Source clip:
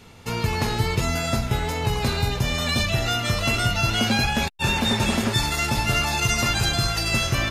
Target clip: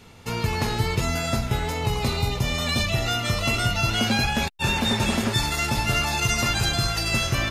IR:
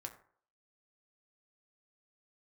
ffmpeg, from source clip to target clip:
-filter_complex "[0:a]asettb=1/sr,asplit=3[link_01][link_02][link_03];[link_01]atrim=end=1.744[link_04];[link_02]atrim=start=1.74:end=3.91,asetpts=PTS-STARTPTS,afade=type=in:duration=0.004:curve=qsin,afade=type=out:start_time=2.166:duration=0.004:curve=qsin,asuperstop=centerf=1600:order=4:qfactor=7.7[link_05];[link_03]atrim=start=3.906[link_06];[link_04][link_05]acrossfade=duration=0.004:curve1=hsin:curve2=qsin[link_07];[link_07][link_06]acrossfade=duration=0.004:curve1=qsin:curve2=hsin,volume=-1dB"

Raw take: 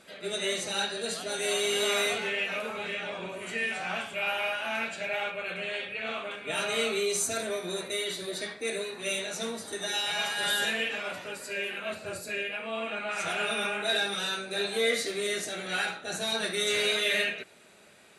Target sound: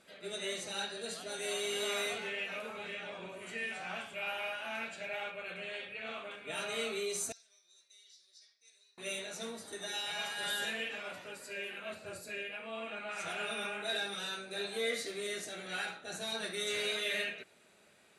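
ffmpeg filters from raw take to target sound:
ffmpeg -i in.wav -filter_complex "[0:a]asettb=1/sr,asplit=3[link_01][link_02][link_03];[link_01]atrim=end=7.324[link_04];[link_02]atrim=start=7.32:end=8.98,asetpts=PTS-STARTPTS,afade=type=in:duration=0.004:curve=qsin,afade=type=out:start_time=1.656:duration=0.004:curve=qsin,bandpass=frequency=5400:width_type=q:width=9.3:csg=0[link_05];[link_03]atrim=start=8.976[link_06];[link_04][link_05]acrossfade=duration=0.004:curve1=hsin:curve2=qsin[link_07];[link_07][link_06]acrossfade=duration=0.004:curve1=qsin:curve2=hsin,volume=-8dB" out.wav

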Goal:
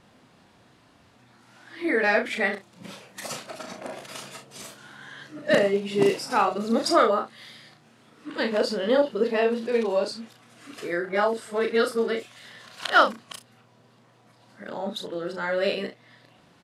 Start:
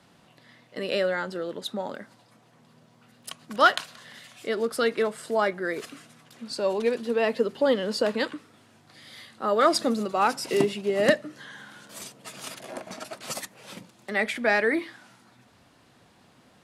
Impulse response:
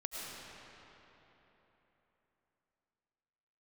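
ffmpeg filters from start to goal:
-af "areverse,highshelf=frequency=8600:gain=-7,aecho=1:1:35|66:0.562|0.188"

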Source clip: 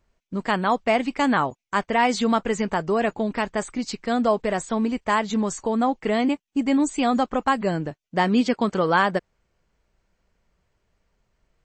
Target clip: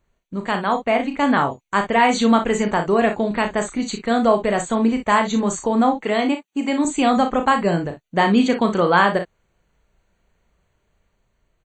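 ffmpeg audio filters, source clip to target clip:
ffmpeg -i in.wav -filter_complex "[0:a]asettb=1/sr,asplit=3[link_01][link_02][link_03];[link_01]atrim=end=0.864[link_04];[link_02]atrim=start=0.86:end=1.34,asetpts=PTS-STARTPTS,afade=type=in:duration=0.004:curve=qsin,afade=type=out:start_time=0.476:duration=0.004:curve=qsin,highshelf=frequency=5100:gain=-8.5[link_05];[link_03]atrim=start=1.336[link_06];[link_04][link_05]acrossfade=duration=0.004:curve1=hsin:curve2=qsin[link_07];[link_07][link_06]acrossfade=duration=0.004:curve1=qsin:curve2=hsin,asettb=1/sr,asplit=3[link_08][link_09][link_10];[link_08]atrim=end=5.984[link_11];[link_09]atrim=start=5.98:end=6.85,asetpts=PTS-STARTPTS,afade=type=in:duration=0.004:curve=qsin,afade=type=out:start_time=0.866:duration=0.004:curve=qsin,highpass=frequency=350:poles=1[link_12];[link_10]atrim=start=6.846[link_13];[link_11][link_12]acrossfade=duration=0.004:curve1=hsin:curve2=qsin[link_14];[link_14][link_13]acrossfade=duration=0.004:curve1=qsin:curve2=hsin,dynaudnorm=framelen=520:gausssize=5:maxgain=4dB,asuperstop=centerf=5200:order=12:qfactor=4.5,aecho=1:1:35|58:0.422|0.282" out.wav

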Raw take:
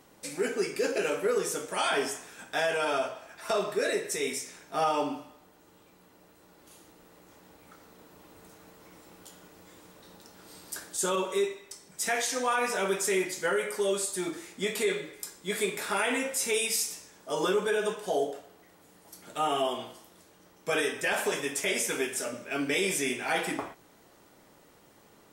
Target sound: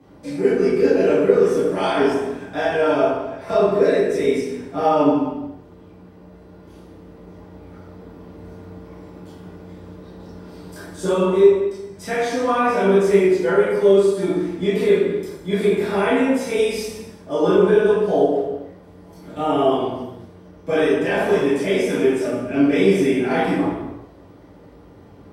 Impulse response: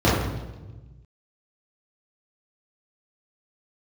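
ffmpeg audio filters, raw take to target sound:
-filter_complex "[1:a]atrim=start_sample=2205,afade=type=out:start_time=0.44:duration=0.01,atrim=end_sample=19845,asetrate=38367,aresample=44100[link_01];[0:a][link_01]afir=irnorm=-1:irlink=0,volume=-14dB"

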